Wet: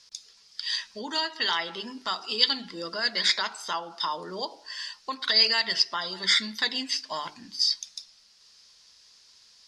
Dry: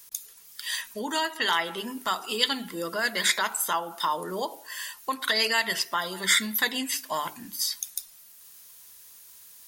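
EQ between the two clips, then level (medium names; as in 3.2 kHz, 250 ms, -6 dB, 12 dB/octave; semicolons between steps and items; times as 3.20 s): four-pole ladder low-pass 5.4 kHz, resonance 65%; +7.0 dB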